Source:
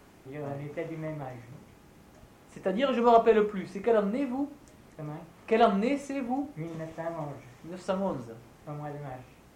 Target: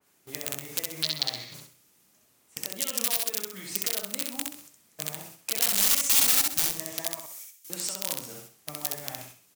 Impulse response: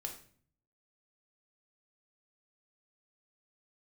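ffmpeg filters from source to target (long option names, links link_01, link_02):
-filter_complex "[0:a]highpass=100,agate=range=-17dB:threshold=-47dB:ratio=16:detection=peak,asettb=1/sr,asplit=3[link_01][link_02][link_03];[link_01]atrim=end=7.194[link_04];[link_02]atrim=start=7.19:end=7.7,asetpts=PTS-STARTPTS,afade=type=in:duration=0.004:curve=qsin,afade=type=out:start_time=0.506:duration=0.004:curve=qsin,aderivative[link_05];[link_03]atrim=start=7.696[link_06];[link_04][link_05]acrossfade=duration=0.004:curve1=hsin:curve2=qsin[link_07];[link_07][link_06]acrossfade=duration=0.004:curve1=qsin:curve2=hsin,acompressor=threshold=-39dB:ratio=4,alimiter=level_in=8.5dB:limit=-24dB:level=0:latency=1:release=230,volume=-8.5dB,asettb=1/sr,asplit=3[link_08][link_09][link_10];[link_08]atrim=end=5.624[link_11];[link_09]atrim=start=5.62:end=6.65,asetpts=PTS-STARTPTS,afade=type=in:duration=0.004:curve=qsin,afade=type=out:start_time=1.026:duration=0.004:curve=qsin,acontrast=25[link_12];[link_10]atrim=start=6.646[link_13];[link_11][link_12]acrossfade=duration=0.004:curve1=hsin:curve2=qsin[link_14];[link_14][link_13]acrossfade=duration=0.004:curve1=qsin:curve2=hsin,aeval=exprs='(mod(44.7*val(0)+1,2)-1)/44.7':channel_layout=same,asettb=1/sr,asplit=3[link_15][link_16][link_17];[link_15]atrim=end=1.034[link_18];[link_16]atrim=start=1.03:end=1.54,asetpts=PTS-STARTPTS,afade=type=in:duration=0.004:curve=qsin,afade=type=out:start_time=0.506:duration=0.004:curve=qsin,lowpass=frequency=4200:width_type=q:width=5.9[link_19];[link_17]atrim=start=1.536[link_20];[link_18][link_19]acrossfade=duration=0.004:curve1=hsin:curve2=qsin[link_21];[link_21][link_20]acrossfade=duration=0.004:curve1=qsin:curve2=hsin,acrusher=bits=8:mode=log:mix=0:aa=0.000001,crystalizer=i=7.5:c=0,asplit=2[link_22][link_23];[link_23]aecho=0:1:65|130|195|260:0.708|0.219|0.068|0.0211[link_24];[link_22][link_24]amix=inputs=2:normalize=0,adynamicequalizer=threshold=0.00158:dfrequency=2600:dqfactor=0.7:tfrequency=2600:tqfactor=0.7:attack=5:release=100:ratio=0.375:range=3:mode=boostabove:tftype=highshelf,volume=-2.5dB"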